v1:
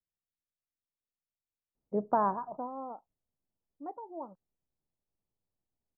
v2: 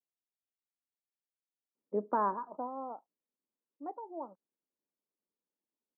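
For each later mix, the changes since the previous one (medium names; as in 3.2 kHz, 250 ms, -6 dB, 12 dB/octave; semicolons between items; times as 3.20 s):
first voice: add peaking EQ 720 Hz -14.5 dB 0.23 oct; master: add high-pass 230 Hz 24 dB/octave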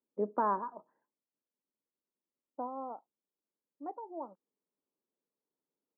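first voice: entry -1.75 s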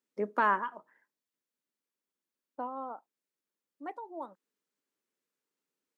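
master: remove low-pass 1 kHz 24 dB/octave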